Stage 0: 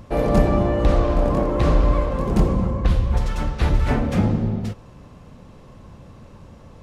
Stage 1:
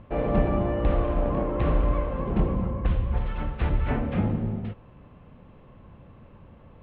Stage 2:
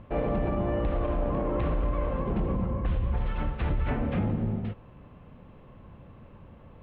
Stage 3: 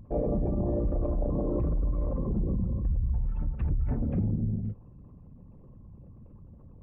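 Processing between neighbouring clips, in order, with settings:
Butterworth low-pass 3,200 Hz 36 dB per octave; level −6 dB
brickwall limiter −19.5 dBFS, peak gain reduction 8.5 dB
spectral envelope exaggerated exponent 2

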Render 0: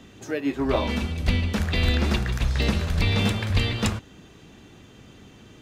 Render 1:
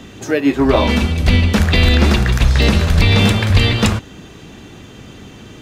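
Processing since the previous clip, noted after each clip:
boost into a limiter +12.5 dB
level −1 dB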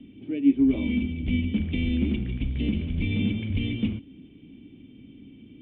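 formant resonators in series i
level −3.5 dB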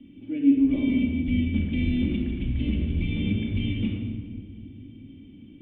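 rectangular room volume 2,200 cubic metres, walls mixed, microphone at 2.4 metres
level −5 dB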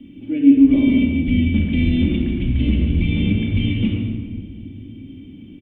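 single-tap delay 139 ms −11 dB
level +7.5 dB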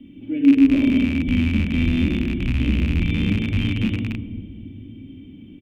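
loose part that buzzes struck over −19 dBFS, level −17 dBFS
level −2.5 dB

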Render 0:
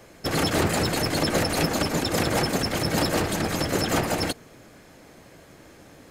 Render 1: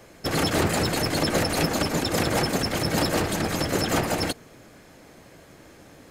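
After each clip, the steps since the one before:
no processing that can be heard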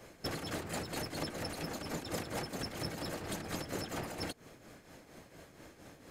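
downward compressor 6 to 1, threshold −31 dBFS, peak gain reduction 12.5 dB
shaped tremolo triangle 4.3 Hz, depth 65%
level −3 dB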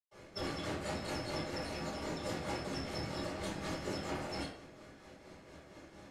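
convolution reverb RT60 0.65 s, pre-delay 112 ms
level +15 dB

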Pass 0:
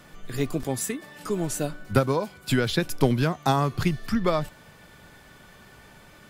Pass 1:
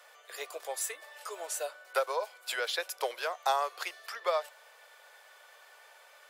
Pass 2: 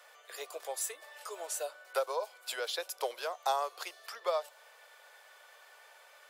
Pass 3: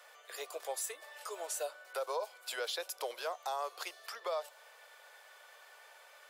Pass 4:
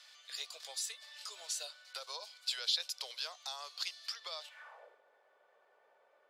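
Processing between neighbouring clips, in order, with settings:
Butterworth high-pass 490 Hz 48 dB per octave; level −4 dB
dynamic equaliser 1,900 Hz, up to −7 dB, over −48 dBFS, Q 1.2; level −1 dB
brickwall limiter −27.5 dBFS, peak gain reduction 9 dB
band-pass filter sweep 4,400 Hz → 210 Hz, 0:04.41–0:05.02; level +10 dB

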